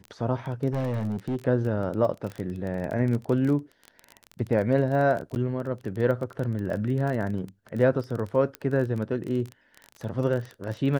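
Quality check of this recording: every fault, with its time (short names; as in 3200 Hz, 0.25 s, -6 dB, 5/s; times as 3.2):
crackle 23/s -30 dBFS
0.71–1.36 clipped -24 dBFS
5.35–5.36 gap 9.9 ms
8.55 pop -19 dBFS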